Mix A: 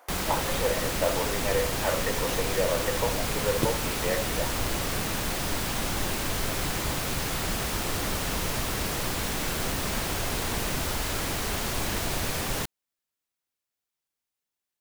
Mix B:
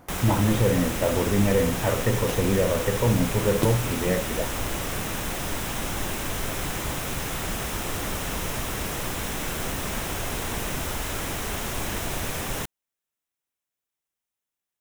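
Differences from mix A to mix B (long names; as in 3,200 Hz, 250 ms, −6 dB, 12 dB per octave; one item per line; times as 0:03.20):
speech: remove high-pass filter 510 Hz 24 dB per octave
first sound: add parametric band 4,500 Hz −8 dB 0.3 octaves
second sound +3.5 dB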